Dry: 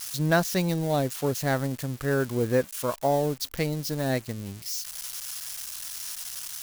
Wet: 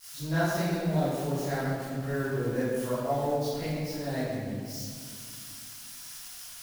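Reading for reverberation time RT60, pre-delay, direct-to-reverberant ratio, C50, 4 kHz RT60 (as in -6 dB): 2.2 s, 17 ms, -14.5 dB, -4.5 dB, 1.2 s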